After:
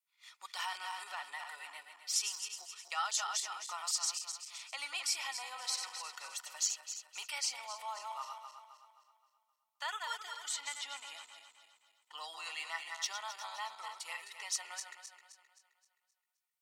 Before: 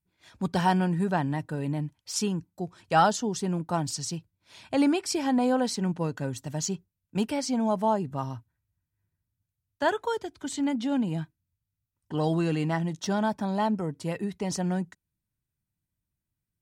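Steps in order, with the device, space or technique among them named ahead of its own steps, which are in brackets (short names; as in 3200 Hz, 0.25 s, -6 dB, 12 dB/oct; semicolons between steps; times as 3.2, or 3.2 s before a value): regenerating reverse delay 0.131 s, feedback 65%, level -7.5 dB; PA system with an anti-feedback notch (HPF 160 Hz 12 dB/oct; Butterworth band-stop 1600 Hz, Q 5.1; limiter -19.5 dBFS, peak gain reduction 10.5 dB); HPF 1200 Hz 24 dB/oct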